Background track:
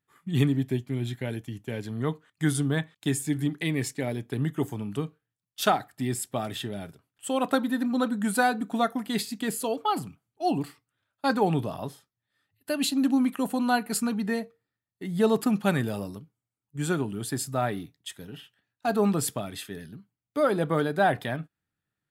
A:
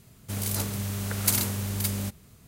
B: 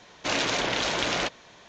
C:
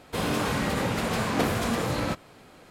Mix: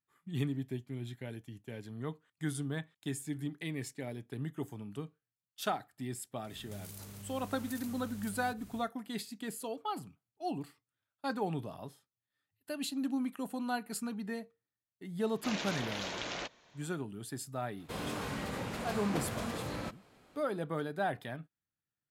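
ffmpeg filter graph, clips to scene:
ffmpeg -i bed.wav -i cue0.wav -i cue1.wav -i cue2.wav -filter_complex "[0:a]volume=-11dB[link_01];[1:a]acompressor=threshold=-45dB:ratio=6:attack=3.2:release=140:knee=1:detection=peak,atrim=end=2.47,asetpts=PTS-STARTPTS,volume=-1dB,afade=type=in:duration=0.1,afade=type=out:start_time=2.37:duration=0.1,adelay=6430[link_02];[2:a]atrim=end=1.68,asetpts=PTS-STARTPTS,volume=-12.5dB,afade=type=in:duration=0.004:curve=hsin,afade=type=out:start_time=1.676:duration=0.004:curve=hsin,adelay=15190[link_03];[3:a]atrim=end=2.7,asetpts=PTS-STARTPTS,volume=-11.5dB,afade=type=in:duration=0.05,afade=type=out:start_time=2.65:duration=0.05,adelay=17760[link_04];[link_01][link_02][link_03][link_04]amix=inputs=4:normalize=0" out.wav

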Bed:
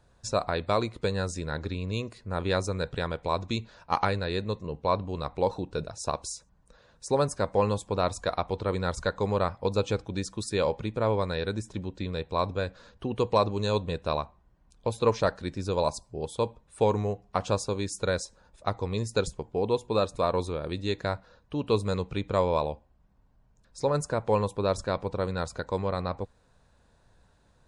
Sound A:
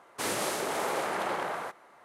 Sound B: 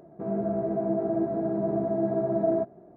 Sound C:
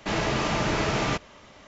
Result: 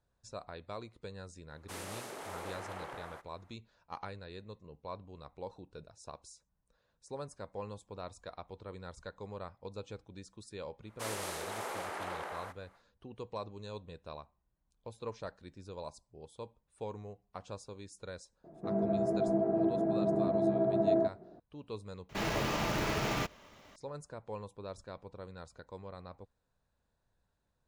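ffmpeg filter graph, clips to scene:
ffmpeg -i bed.wav -i cue0.wav -i cue1.wav -i cue2.wav -filter_complex "[1:a]asplit=2[link_01][link_02];[0:a]volume=-17.5dB[link_03];[link_02]lowshelf=frequency=220:gain=-10[link_04];[3:a]acrusher=bits=4:mode=log:mix=0:aa=0.000001[link_05];[link_01]atrim=end=2.04,asetpts=PTS-STARTPTS,volume=-13dB,afade=type=in:duration=0.004:curve=hsin,afade=type=out:start_time=2.036:duration=0.004:curve=hsin,adelay=1500[link_06];[link_04]atrim=end=2.04,asetpts=PTS-STARTPTS,volume=-8dB,afade=type=in:duration=0.1,afade=type=out:start_time=1.94:duration=0.1,adelay=10810[link_07];[2:a]atrim=end=2.96,asetpts=PTS-STARTPTS,volume=-3dB,afade=type=in:duration=0.004:curve=hsin,afade=type=out:start_time=2.956:duration=0.004:curve=hsin,adelay=813204S[link_08];[link_05]atrim=end=1.67,asetpts=PTS-STARTPTS,volume=-7.5dB,afade=type=in:duration=0.004:curve=hsin,afade=type=out:start_time=1.666:duration=0.004:curve=hsin,adelay=22090[link_09];[link_03][link_06][link_07][link_08][link_09]amix=inputs=5:normalize=0" out.wav

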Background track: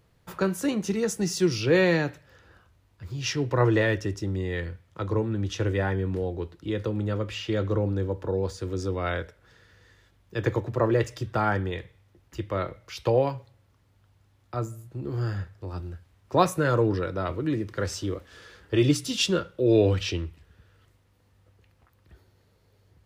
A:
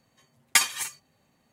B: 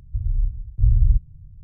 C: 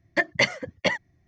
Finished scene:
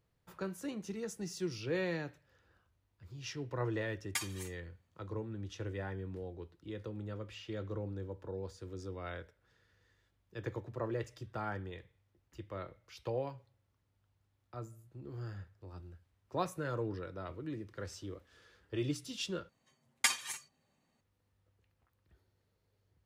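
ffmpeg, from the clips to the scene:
ffmpeg -i bed.wav -i cue0.wav -filter_complex "[1:a]asplit=2[link_01][link_02];[0:a]volume=-14.5dB[link_03];[link_02]lowpass=11000[link_04];[link_03]asplit=2[link_05][link_06];[link_05]atrim=end=19.494[link_07];[link_04]atrim=end=1.52,asetpts=PTS-STARTPTS,volume=-9dB[link_08];[link_06]atrim=start=21.006[link_09];[link_01]atrim=end=1.52,asetpts=PTS-STARTPTS,volume=-17dB,afade=type=in:duration=0.004:curve=hsin,afade=type=out:start_time=1.516:duration=0.004:curve=hsin,adelay=3600[link_10];[link_07][link_08]acrossfade=duration=0.004:curve1=hsin:curve2=hsin[link_11];[link_11][link_09]acrossfade=duration=0.004:curve1=hsin:curve2=hsin[link_12];[link_12][link_10]amix=inputs=2:normalize=0" out.wav

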